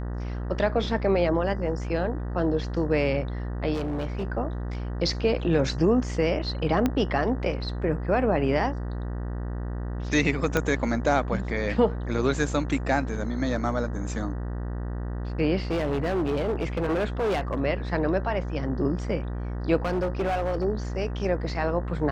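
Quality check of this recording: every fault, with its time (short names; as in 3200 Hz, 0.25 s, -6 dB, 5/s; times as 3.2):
buzz 60 Hz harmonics 32 -31 dBFS
3.73–4.25 clipped -25 dBFS
6.86 pop -11 dBFS
10.57 pop -9 dBFS
15.71–17.6 clipped -22 dBFS
19.85–20.65 clipped -22 dBFS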